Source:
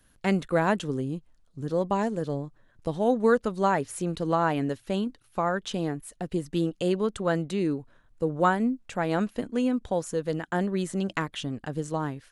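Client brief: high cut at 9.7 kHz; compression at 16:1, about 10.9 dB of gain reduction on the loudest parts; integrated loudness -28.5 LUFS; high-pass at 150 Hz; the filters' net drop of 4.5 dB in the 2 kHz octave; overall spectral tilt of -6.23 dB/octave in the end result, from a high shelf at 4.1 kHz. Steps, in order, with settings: high-pass 150 Hz; low-pass 9.7 kHz; peaking EQ 2 kHz -5 dB; treble shelf 4.1 kHz -7 dB; compression 16:1, threshold -28 dBFS; trim +6.5 dB

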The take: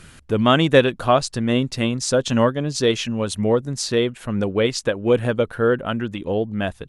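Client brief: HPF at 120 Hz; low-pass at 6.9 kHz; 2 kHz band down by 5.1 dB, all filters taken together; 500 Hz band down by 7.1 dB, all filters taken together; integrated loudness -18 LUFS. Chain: high-pass 120 Hz; low-pass 6.9 kHz; peaking EQ 500 Hz -8 dB; peaking EQ 2 kHz -6.5 dB; trim +6.5 dB

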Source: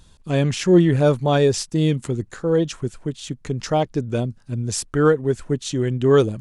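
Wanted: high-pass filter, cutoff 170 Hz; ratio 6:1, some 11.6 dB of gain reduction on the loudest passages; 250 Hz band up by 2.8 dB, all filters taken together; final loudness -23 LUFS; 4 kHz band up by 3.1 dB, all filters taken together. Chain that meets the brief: high-pass 170 Hz; peaking EQ 250 Hz +5.5 dB; peaking EQ 4 kHz +4 dB; compression 6:1, threshold -20 dBFS; trim +3 dB

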